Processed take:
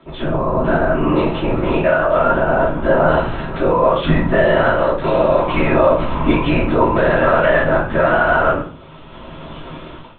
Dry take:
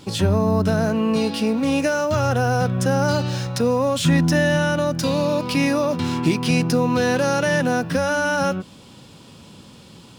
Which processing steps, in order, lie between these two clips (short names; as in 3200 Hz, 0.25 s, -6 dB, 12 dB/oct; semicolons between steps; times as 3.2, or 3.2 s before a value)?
LPC vocoder at 8 kHz whisper; LPF 1400 Hz 12 dB/oct; tilt +3.5 dB/oct; reverb RT60 0.40 s, pre-delay 3 ms, DRR -4.5 dB; short-mantissa float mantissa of 8-bit; AGC gain up to 15 dB; gain -1 dB